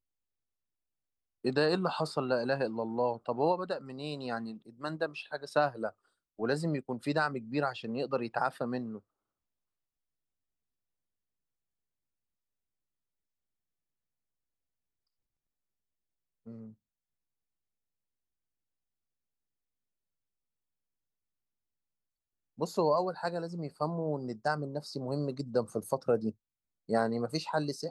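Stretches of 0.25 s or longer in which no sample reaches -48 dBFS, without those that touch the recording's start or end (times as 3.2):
5.91–6.39
8.99–16.47
16.72–22.58
26.31–26.89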